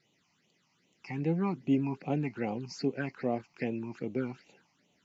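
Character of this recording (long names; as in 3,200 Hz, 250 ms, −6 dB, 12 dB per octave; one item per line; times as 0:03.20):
phaser sweep stages 8, 2.5 Hz, lowest notch 450–1,600 Hz
Ogg Vorbis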